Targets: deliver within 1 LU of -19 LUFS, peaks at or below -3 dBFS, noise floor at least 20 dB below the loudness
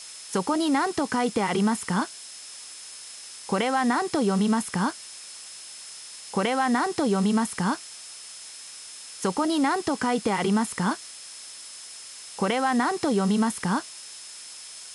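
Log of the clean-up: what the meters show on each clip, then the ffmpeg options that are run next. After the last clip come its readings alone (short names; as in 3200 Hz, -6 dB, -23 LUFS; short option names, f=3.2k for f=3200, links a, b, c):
steady tone 5200 Hz; tone level -46 dBFS; noise floor -42 dBFS; noise floor target -46 dBFS; loudness -25.5 LUFS; peak -12.5 dBFS; loudness target -19.0 LUFS
-> -af "bandreject=f=5.2k:w=30"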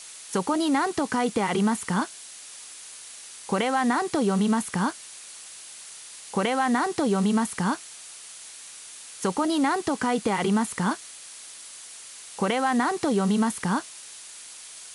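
steady tone none; noise floor -44 dBFS; noise floor target -46 dBFS
-> -af "afftdn=nr=6:nf=-44"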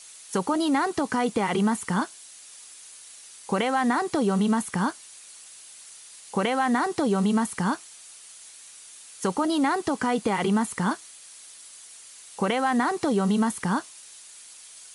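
noise floor -47 dBFS; loudness -25.5 LUFS; peak -12.5 dBFS; loudness target -19.0 LUFS
-> -af "volume=6.5dB"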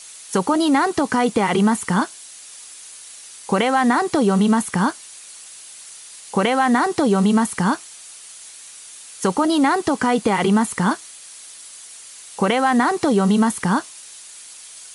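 loudness -19.0 LUFS; peak -6.0 dBFS; noise floor -41 dBFS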